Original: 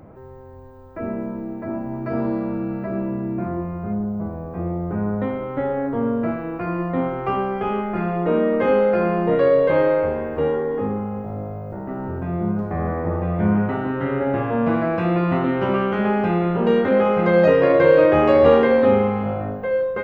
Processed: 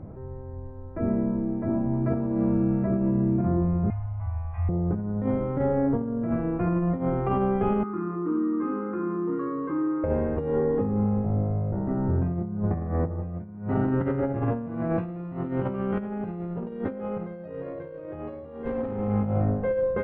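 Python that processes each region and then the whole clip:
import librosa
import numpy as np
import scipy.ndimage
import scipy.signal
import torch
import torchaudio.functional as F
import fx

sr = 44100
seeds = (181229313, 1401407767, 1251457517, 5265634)

y = fx.chain(x, sr, fx.cheby1_bandstop(low_hz=100.0, high_hz=850.0, order=3),
    fx.band_shelf(hz=2500.0, db=11.0, octaves=1.0), at=(3.9, 4.69))
y = fx.chain(y, sr, fx.double_bandpass(hz=610.0, octaves=1.9),
    fx.env_flatten(amount_pct=50), at=(7.83, 10.04))
y = fx.chain(y, sr, fx.lowpass(hz=3400.0, slope=12),
    fx.tube_stage(drive_db=13.0, bias=0.55), at=(18.65, 19.22))
y = fx.lowpass(y, sr, hz=1300.0, slope=6)
y = fx.low_shelf(y, sr, hz=260.0, db=11.5)
y = fx.over_compress(y, sr, threshold_db=-19.0, ratio=-0.5)
y = y * librosa.db_to_amplitude(-6.5)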